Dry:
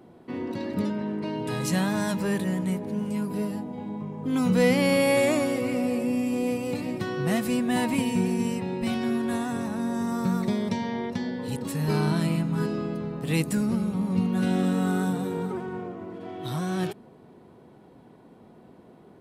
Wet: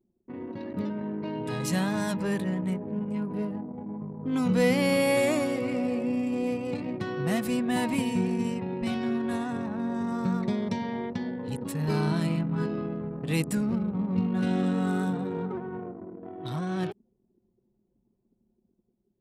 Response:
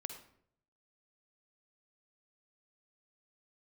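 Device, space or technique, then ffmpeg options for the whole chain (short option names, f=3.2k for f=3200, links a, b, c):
voice memo with heavy noise removal: -af "anlmdn=2.51,dynaudnorm=f=350:g=5:m=4dB,volume=-6dB"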